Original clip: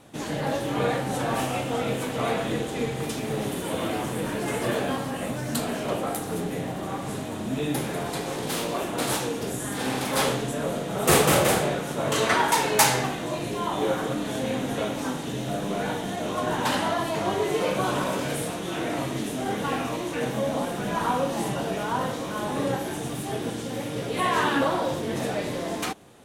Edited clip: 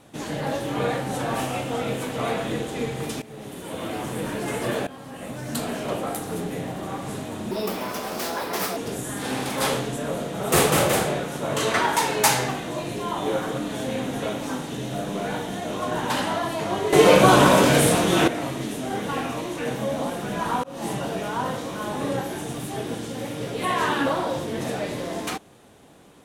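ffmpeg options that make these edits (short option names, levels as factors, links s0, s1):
-filter_complex "[0:a]asplit=8[s0][s1][s2][s3][s4][s5][s6][s7];[s0]atrim=end=3.22,asetpts=PTS-STARTPTS,afade=t=out:st=3.216:d=0.004:c=hsin:silence=0.158489[s8];[s1]atrim=start=3.22:end=4.87,asetpts=PTS-STARTPTS,afade=t=in:d=0.96:silence=0.158489,afade=t=out:st=1.646:d=0.004:c=hsin:silence=0.141254[s9];[s2]atrim=start=4.87:end=7.514,asetpts=PTS-STARTPTS,afade=t=in:d=0.78:silence=0.141254[s10];[s3]atrim=start=7.51:end=9.32,asetpts=PTS-STARTPTS,asetrate=63504,aresample=44100,atrim=end_sample=55431,asetpts=PTS-STARTPTS[s11];[s4]atrim=start=9.316:end=17.482[s12];[s5]atrim=start=17.478:end=18.832,asetpts=PTS-STARTPTS,volume=3.76[s13];[s6]atrim=start=18.828:end=21.19,asetpts=PTS-STARTPTS,afade=t=out:st=2.358:d=0.004:c=hsin[s14];[s7]atrim=start=21.19,asetpts=PTS-STARTPTS,afade=t=in:d=0.25[s15];[s8][s9][s10]concat=n=3:v=0:a=1[s16];[s16][s11]acrossfade=d=0.004:c1=hsin:c2=hsin[s17];[s17][s12]acrossfade=d=0.004:c1=hsin:c2=hsin[s18];[s18][s13]acrossfade=d=0.004:c1=hsin:c2=hsin[s19];[s14][s15]concat=n=2:v=0:a=1[s20];[s19][s20]acrossfade=d=0.004:c1=hsin:c2=hsin"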